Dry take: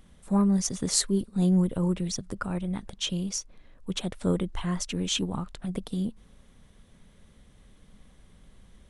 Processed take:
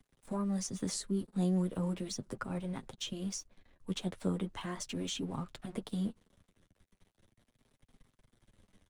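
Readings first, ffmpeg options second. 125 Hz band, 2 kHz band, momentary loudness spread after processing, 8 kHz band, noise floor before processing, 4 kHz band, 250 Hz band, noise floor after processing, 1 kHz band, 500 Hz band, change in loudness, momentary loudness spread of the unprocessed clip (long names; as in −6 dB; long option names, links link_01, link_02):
−8.5 dB, −7.0 dB, 9 LU, −11.0 dB, −57 dBFS, −10.0 dB, −8.5 dB, −82 dBFS, −6.5 dB, −7.0 dB, −9.0 dB, 11 LU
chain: -filter_complex "[0:a]aeval=exprs='sgn(val(0))*max(abs(val(0))-0.00282,0)':channel_layout=same,acrossover=split=110|380[link_01][link_02][link_03];[link_01]acompressor=threshold=-51dB:ratio=4[link_04];[link_02]acompressor=threshold=-30dB:ratio=4[link_05];[link_03]acompressor=threshold=-35dB:ratio=4[link_06];[link_04][link_05][link_06]amix=inputs=3:normalize=0,flanger=delay=7.4:depth=3.7:regen=-18:speed=0.38:shape=sinusoidal"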